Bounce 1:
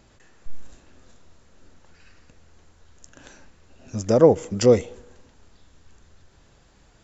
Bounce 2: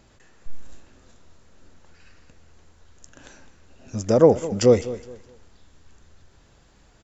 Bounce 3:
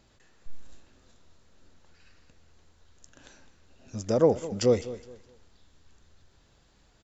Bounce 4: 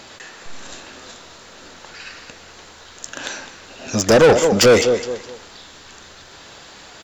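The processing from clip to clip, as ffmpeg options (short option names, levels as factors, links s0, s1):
-af "aecho=1:1:208|416|624:0.168|0.0453|0.0122"
-af "equalizer=f=4000:t=o:w=0.79:g=4.5,volume=0.447"
-filter_complex "[0:a]asplit=2[s0][s1];[s1]highpass=f=720:p=1,volume=25.1,asoftclip=type=tanh:threshold=0.355[s2];[s0][s2]amix=inputs=2:normalize=0,lowpass=f=6700:p=1,volume=0.501,volume=1.88"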